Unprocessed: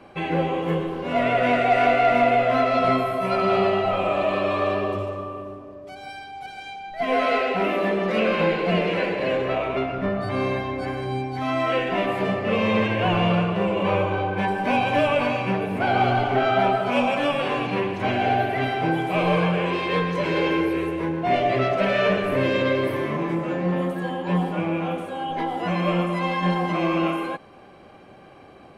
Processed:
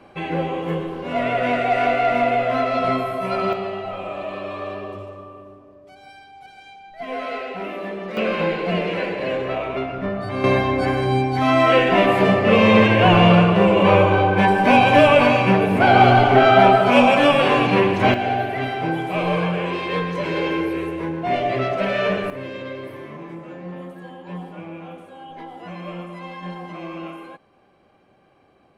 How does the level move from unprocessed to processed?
−0.5 dB
from 0:03.53 −7 dB
from 0:08.17 −0.5 dB
from 0:10.44 +8 dB
from 0:18.14 −0.5 dB
from 0:22.30 −10.5 dB

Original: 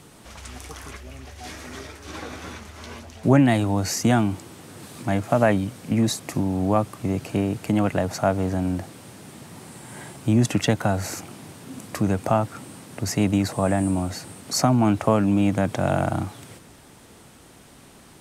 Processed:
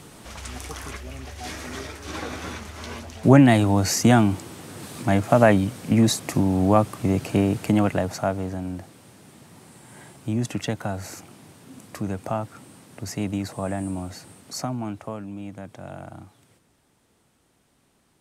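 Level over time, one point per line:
0:07.61 +3 dB
0:08.62 −6.5 dB
0:14.33 −6.5 dB
0:15.29 −16 dB

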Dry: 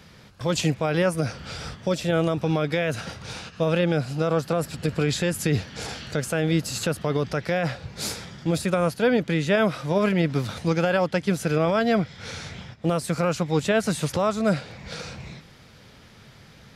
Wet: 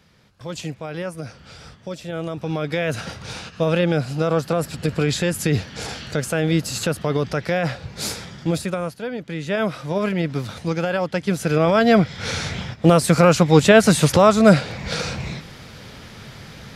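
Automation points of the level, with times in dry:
0:02.10 −7 dB
0:02.92 +3 dB
0:08.47 +3 dB
0:09.11 −9 dB
0:09.64 −0.5 dB
0:11.01 −0.5 dB
0:12.29 +10 dB

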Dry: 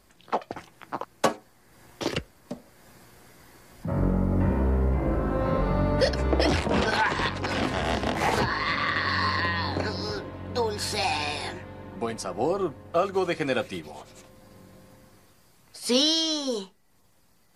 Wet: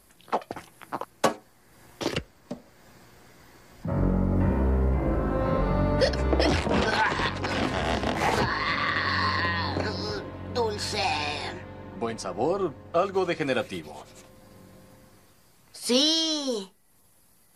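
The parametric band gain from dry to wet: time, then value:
parametric band 11,000 Hz 0.46 octaves
+11.5 dB
from 0:01.10 +1.5 dB
from 0:02.18 −8.5 dB
from 0:04.36 −2.5 dB
from 0:10.75 −10 dB
from 0:13.43 +2 dB
from 0:16.61 +12.5 dB

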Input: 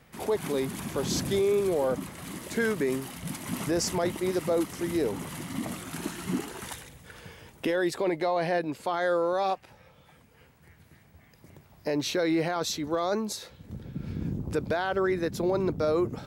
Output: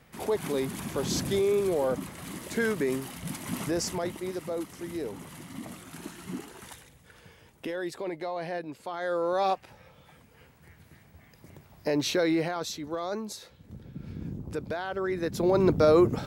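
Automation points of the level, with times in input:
0:03.56 −0.5 dB
0:04.41 −7 dB
0:08.93 −7 dB
0:09.43 +1.5 dB
0:12.21 +1.5 dB
0:12.72 −5 dB
0:15.00 −5 dB
0:15.70 +6 dB

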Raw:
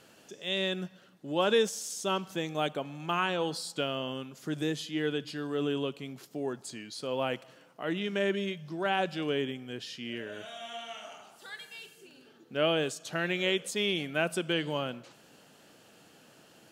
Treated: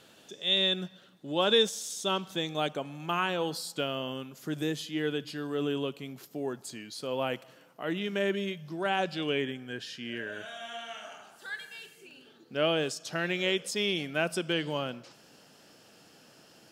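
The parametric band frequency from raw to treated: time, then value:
parametric band +10 dB 0.23 octaves
0:02.58 3,600 Hz
0:02.98 13,000 Hz
0:08.72 13,000 Hz
0:09.51 1,600 Hz
0:11.79 1,600 Hz
0:12.58 5,200 Hz

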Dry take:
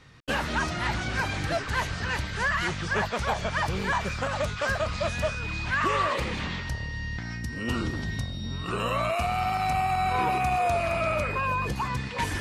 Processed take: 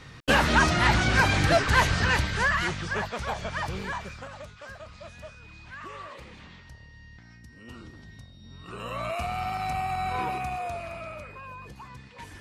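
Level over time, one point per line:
0:02.00 +7 dB
0:03.06 −4 dB
0:03.76 −4 dB
0:04.53 −16 dB
0:08.37 −16 dB
0:09.12 −4 dB
0:10.20 −4 dB
0:11.35 −15 dB

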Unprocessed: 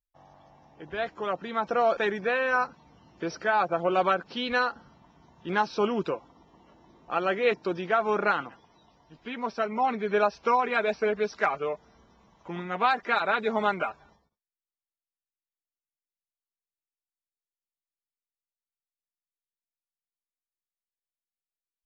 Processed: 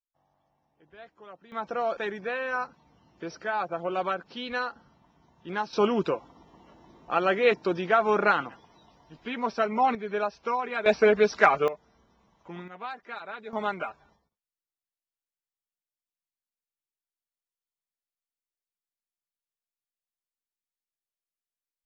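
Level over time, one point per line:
−17 dB
from 0:01.52 −5 dB
from 0:05.73 +2.5 dB
from 0:09.95 −5 dB
from 0:10.86 +6.5 dB
from 0:11.68 −5 dB
from 0:12.68 −13.5 dB
from 0:13.53 −4 dB

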